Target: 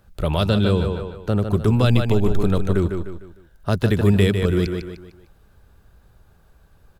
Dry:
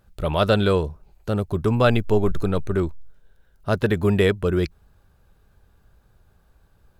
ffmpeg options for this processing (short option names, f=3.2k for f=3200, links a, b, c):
-filter_complex "[0:a]aecho=1:1:151|302|453|604:0.398|0.151|0.0575|0.0218,acrossover=split=290|3000[a][b][c];[b]acompressor=threshold=-27dB:ratio=6[d];[a][d][c]amix=inputs=3:normalize=0,asettb=1/sr,asplit=3[e][f][g];[e]atrim=end=0.464[h];[f]atrim=start=0.46:end=1.51,asetpts=PTS-STARTPTS,afade=t=in:d=0.004:c=qsin,afade=t=out:st=1.046:d=0.004:c=qsin,highshelf=f=4.3k:g=-6.5[i];[g]atrim=start=1.506[j];[h][i]acrossfade=d=0.004:c1=hsin:c2=qsin[k];[k][j]acrossfade=d=0.004:c1=qsin:c2=hsin,volume=4dB"